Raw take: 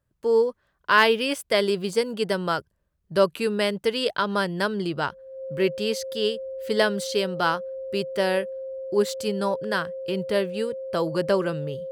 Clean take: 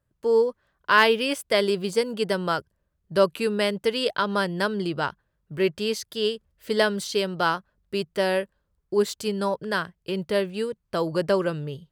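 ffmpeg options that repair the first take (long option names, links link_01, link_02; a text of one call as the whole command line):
ffmpeg -i in.wav -af "bandreject=frequency=530:width=30" out.wav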